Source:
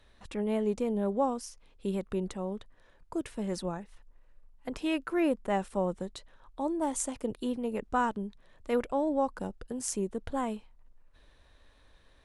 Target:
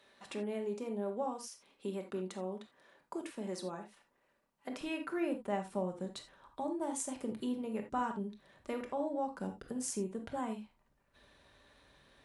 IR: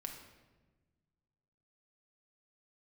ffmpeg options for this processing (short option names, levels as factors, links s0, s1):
-filter_complex "[0:a]acompressor=threshold=0.00891:ratio=2,asetnsamples=n=441:p=0,asendcmd='4.81 highpass f 87',highpass=250[s0];[1:a]atrim=start_sample=2205,afade=t=out:st=0.14:d=0.01,atrim=end_sample=6615[s1];[s0][s1]afir=irnorm=-1:irlink=0,volume=1.68"